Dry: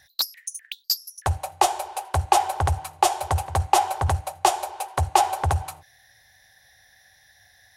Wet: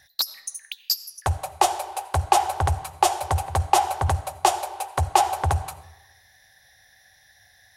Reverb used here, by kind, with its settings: digital reverb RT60 1.1 s, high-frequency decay 0.7×, pre-delay 45 ms, DRR 16.5 dB

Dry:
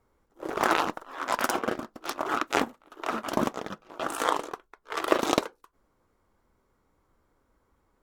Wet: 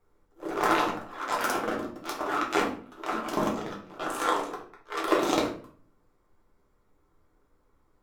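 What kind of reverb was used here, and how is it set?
shoebox room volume 46 m³, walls mixed, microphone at 0.8 m; gain -4.5 dB

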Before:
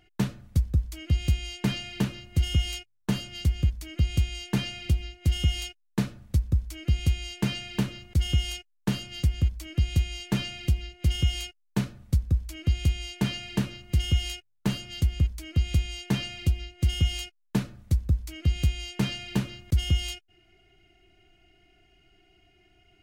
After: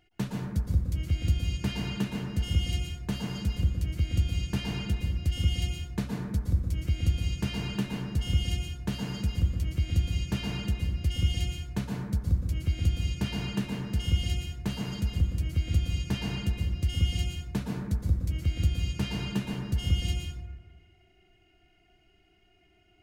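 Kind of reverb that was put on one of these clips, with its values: plate-style reverb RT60 1.4 s, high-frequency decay 0.3×, pre-delay 0.105 s, DRR -1 dB; gain -5.5 dB

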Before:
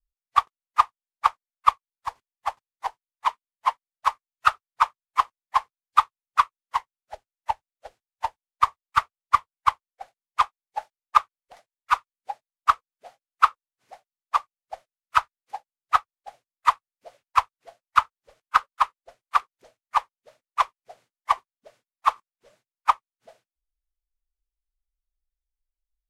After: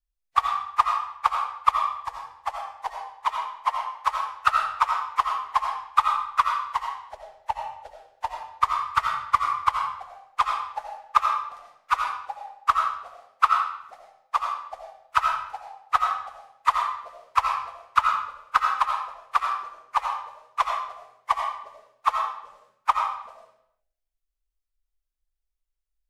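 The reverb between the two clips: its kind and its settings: digital reverb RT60 0.74 s, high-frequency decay 0.9×, pre-delay 45 ms, DRR 1 dB; gain -2 dB

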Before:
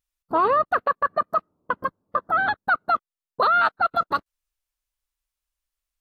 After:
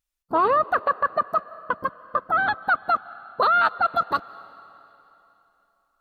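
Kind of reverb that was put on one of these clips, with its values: digital reverb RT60 3.2 s, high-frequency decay 0.95×, pre-delay 0.115 s, DRR 18.5 dB

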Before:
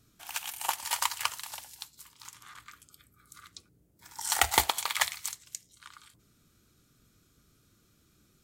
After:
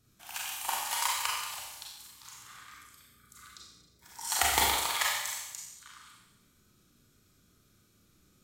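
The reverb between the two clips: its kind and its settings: Schroeder reverb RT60 1 s, combs from 30 ms, DRR -4 dB; gain -5 dB

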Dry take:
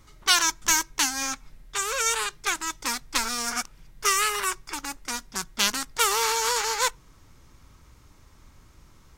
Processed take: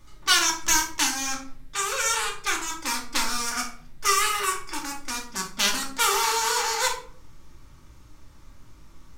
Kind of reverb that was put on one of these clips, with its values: shoebox room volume 530 m³, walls furnished, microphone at 2.5 m; gain -2.5 dB

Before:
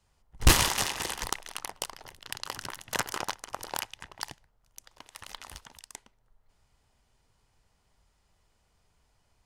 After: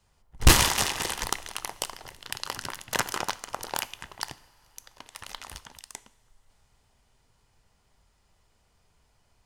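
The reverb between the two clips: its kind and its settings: two-slope reverb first 0.54 s, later 4.6 s, from -18 dB, DRR 15 dB; gain +3 dB

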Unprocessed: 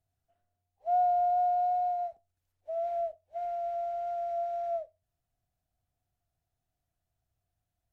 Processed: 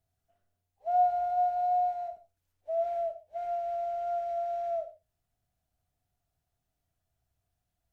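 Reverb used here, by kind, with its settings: non-linear reverb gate 0.17 s falling, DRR 7 dB; gain +1.5 dB

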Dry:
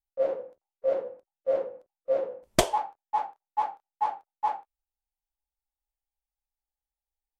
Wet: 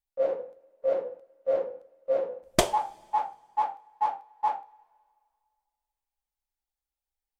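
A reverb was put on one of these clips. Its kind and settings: two-slope reverb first 0.31 s, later 2.1 s, from -19 dB, DRR 13 dB

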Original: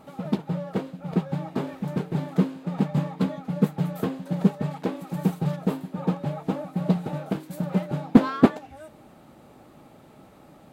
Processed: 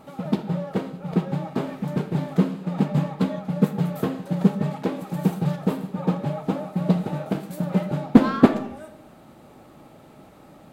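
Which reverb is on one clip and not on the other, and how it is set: digital reverb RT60 0.74 s, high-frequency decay 0.7×, pre-delay 0 ms, DRR 9.5 dB; gain +2 dB

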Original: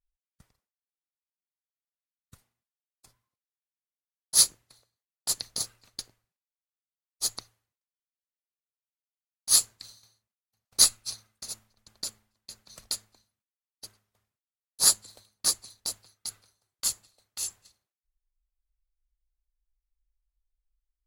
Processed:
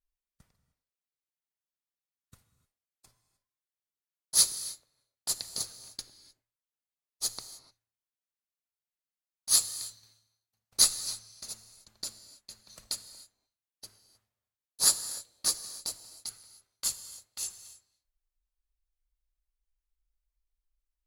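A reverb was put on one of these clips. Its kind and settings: non-linear reverb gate 0.33 s flat, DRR 11 dB; gain -3 dB

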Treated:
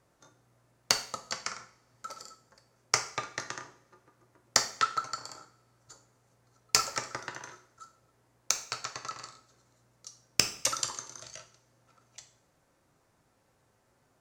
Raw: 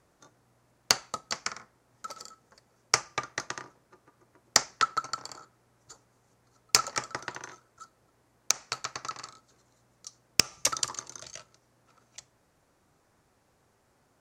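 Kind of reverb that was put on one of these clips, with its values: two-slope reverb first 0.49 s, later 2 s, from -27 dB, DRR 5 dB; gain -3 dB

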